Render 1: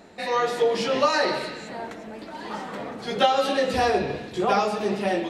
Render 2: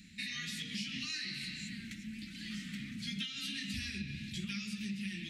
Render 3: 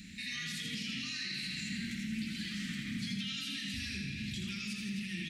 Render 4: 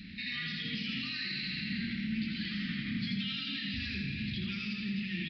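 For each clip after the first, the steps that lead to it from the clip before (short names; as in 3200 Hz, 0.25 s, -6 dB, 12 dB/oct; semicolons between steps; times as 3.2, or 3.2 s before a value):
elliptic band-stop 210–2200 Hz, stop band 60 dB; compressor 6:1, threshold -37 dBFS, peak gain reduction 12 dB
limiter -38 dBFS, peak gain reduction 10.5 dB; feedback echo 82 ms, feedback 57%, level -5 dB; gain +6 dB
air absorption 56 m; downsampling 11025 Hz; gain +3.5 dB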